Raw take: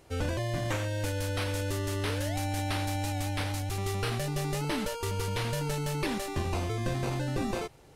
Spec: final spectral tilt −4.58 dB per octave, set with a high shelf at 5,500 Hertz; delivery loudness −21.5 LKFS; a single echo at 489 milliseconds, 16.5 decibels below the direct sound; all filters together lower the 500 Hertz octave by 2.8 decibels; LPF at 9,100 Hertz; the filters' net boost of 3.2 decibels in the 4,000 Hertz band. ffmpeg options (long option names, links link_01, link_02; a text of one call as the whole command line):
ffmpeg -i in.wav -af "lowpass=9100,equalizer=frequency=500:width_type=o:gain=-3.5,equalizer=frequency=4000:width_type=o:gain=3,highshelf=frequency=5500:gain=3,aecho=1:1:489:0.15,volume=10.5dB" out.wav